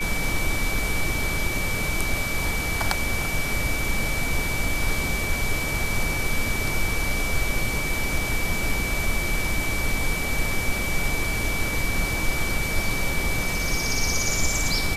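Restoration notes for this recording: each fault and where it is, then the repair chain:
whistle 2,300 Hz −28 dBFS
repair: notch filter 2,300 Hz, Q 30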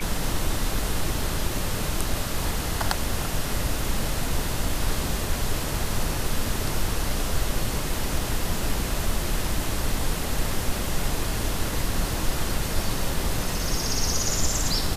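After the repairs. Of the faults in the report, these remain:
none of them is left

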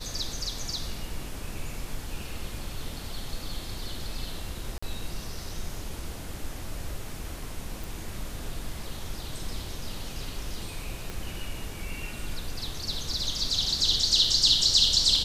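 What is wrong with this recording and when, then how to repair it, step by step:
0:04.78–0:04.83: drop-out 45 ms
0:07.84: click
0:11.10: click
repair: click removal
repair the gap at 0:04.78, 45 ms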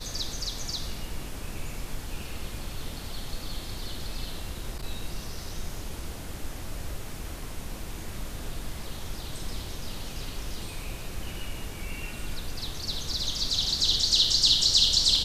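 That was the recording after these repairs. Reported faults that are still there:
0:11.10: click

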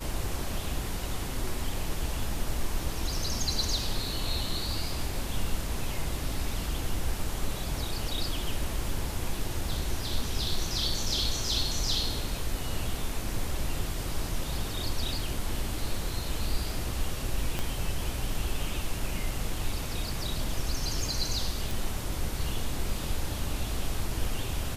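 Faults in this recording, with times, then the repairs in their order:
0:17.59: click −16 dBFS
0:21.71: click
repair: click removal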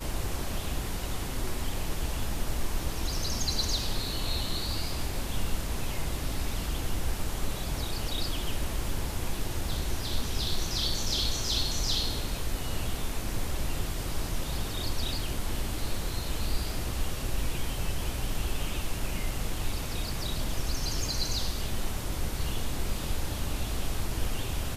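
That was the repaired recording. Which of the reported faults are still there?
0:17.59: click

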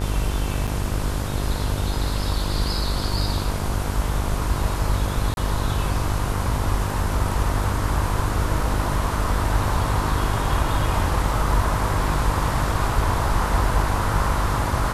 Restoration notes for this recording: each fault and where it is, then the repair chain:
mains buzz 50 Hz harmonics 32 −26 dBFS
0:00.67–0:00.68: drop-out 6.7 ms
0:05.34–0:05.37: drop-out 31 ms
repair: hum removal 50 Hz, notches 32
repair the gap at 0:00.67, 6.7 ms
repair the gap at 0:05.34, 31 ms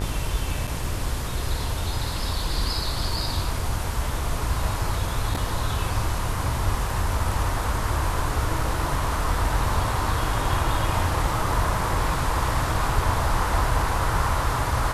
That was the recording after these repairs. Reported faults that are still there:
none of them is left

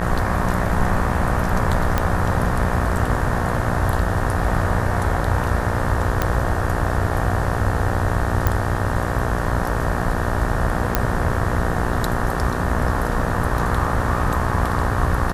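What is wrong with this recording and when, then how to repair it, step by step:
mains buzz 60 Hz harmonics 31 −25 dBFS
0:01.98: click −5 dBFS
0:06.22: click −5 dBFS
0:08.47: click −5 dBFS
0:10.95: click −1 dBFS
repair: click removal
hum removal 60 Hz, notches 31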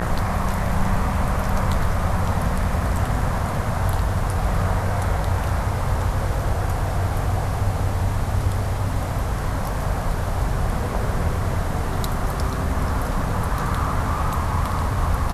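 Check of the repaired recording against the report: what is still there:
none of them is left

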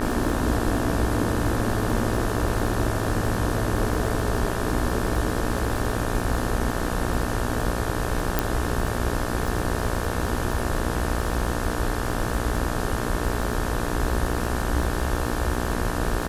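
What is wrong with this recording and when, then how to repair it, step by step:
mains buzz 60 Hz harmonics 30 −29 dBFS
surface crackle 31 per second −28 dBFS
0:08.39: click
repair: click removal
hum removal 60 Hz, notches 30

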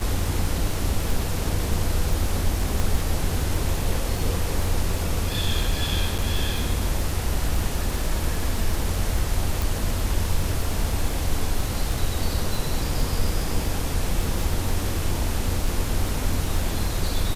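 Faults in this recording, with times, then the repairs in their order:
surface crackle 26 per second −25 dBFS
0:02.80: click
0:06.18–0:06.19: drop-out 6.9 ms
0:09.62: click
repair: click removal
repair the gap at 0:06.18, 6.9 ms

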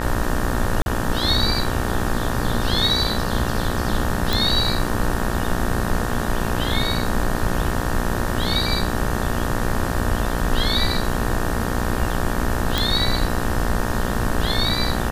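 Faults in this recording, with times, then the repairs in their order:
mains buzz 60 Hz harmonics 31 −26 dBFS
0:00.82–0:00.86: drop-out 41 ms
0:04.33: click
0:12.78: click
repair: click removal
hum removal 60 Hz, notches 31
repair the gap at 0:00.82, 41 ms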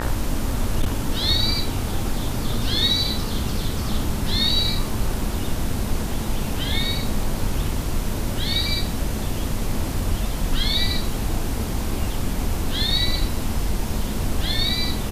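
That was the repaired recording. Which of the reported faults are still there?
none of them is left

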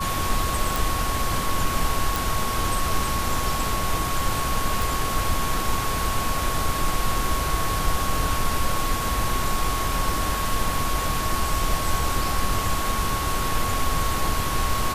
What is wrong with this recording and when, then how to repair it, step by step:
whistle 1,100 Hz −28 dBFS
0:00.76: click
0:02.16: click
0:04.82: click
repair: click removal
notch filter 1,100 Hz, Q 30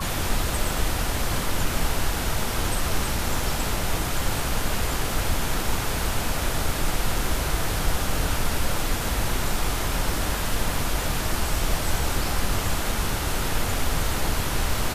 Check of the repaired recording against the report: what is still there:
none of them is left

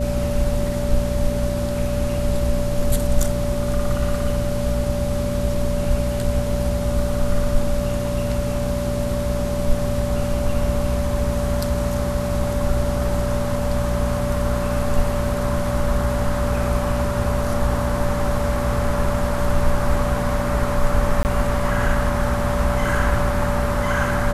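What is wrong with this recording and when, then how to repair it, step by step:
mains hum 60 Hz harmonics 4 −25 dBFS
whistle 580 Hz −25 dBFS
0:21.23–0:21.25: drop-out 19 ms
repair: notch filter 580 Hz, Q 30
hum removal 60 Hz, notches 4
repair the gap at 0:21.23, 19 ms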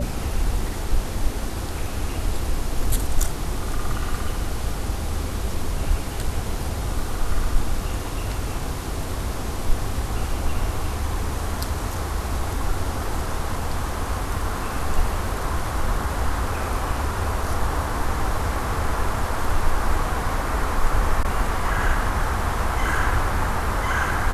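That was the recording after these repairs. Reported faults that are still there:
none of them is left

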